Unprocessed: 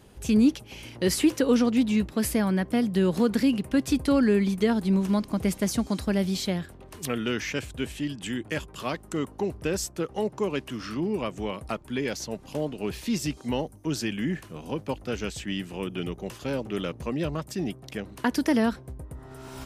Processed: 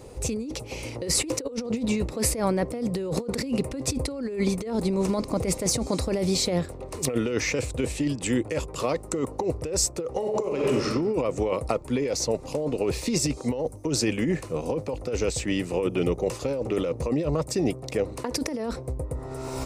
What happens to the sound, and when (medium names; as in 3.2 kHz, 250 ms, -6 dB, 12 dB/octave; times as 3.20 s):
10.15–10.87 s: reverb throw, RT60 1.1 s, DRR 1.5 dB
whole clip: graphic EQ with 31 bands 200 Hz -9 dB, 500 Hz +10 dB, 1.6 kHz -11 dB, 3.15 kHz -11 dB, 8 kHz +3 dB, 12.5 kHz -11 dB; compressor with a negative ratio -30 dBFS, ratio -1; trim +4 dB